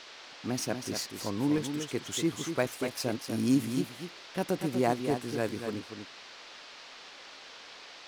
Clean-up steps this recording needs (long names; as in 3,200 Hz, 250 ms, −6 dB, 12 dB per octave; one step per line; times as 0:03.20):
repair the gap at 0:01.03/0:01.58/0:02.32/0:05.11, 1.3 ms
noise reduction from a noise print 27 dB
echo removal 241 ms −7.5 dB